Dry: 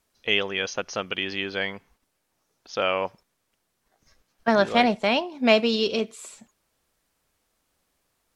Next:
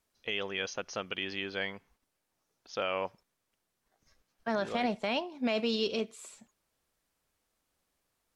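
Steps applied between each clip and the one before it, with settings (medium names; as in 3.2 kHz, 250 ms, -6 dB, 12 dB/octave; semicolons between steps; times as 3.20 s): peak limiter -13 dBFS, peak gain reduction 8.5 dB; trim -7 dB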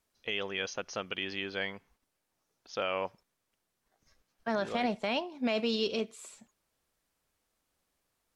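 no audible change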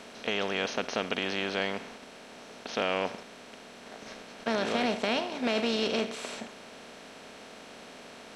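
spectral levelling over time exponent 0.4; trim -2 dB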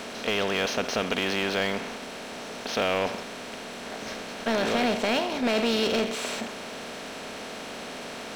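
power-law waveshaper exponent 0.7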